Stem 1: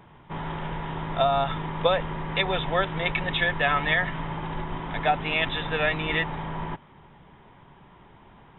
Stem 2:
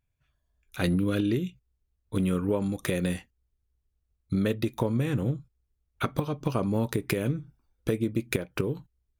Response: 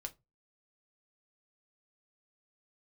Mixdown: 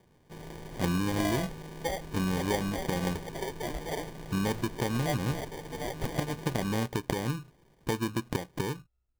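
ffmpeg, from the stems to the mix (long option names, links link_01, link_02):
-filter_complex "[0:a]volume=-11.5dB[link_01];[1:a]volume=-3.5dB[link_02];[link_01][link_02]amix=inputs=2:normalize=0,acrusher=samples=33:mix=1:aa=0.000001"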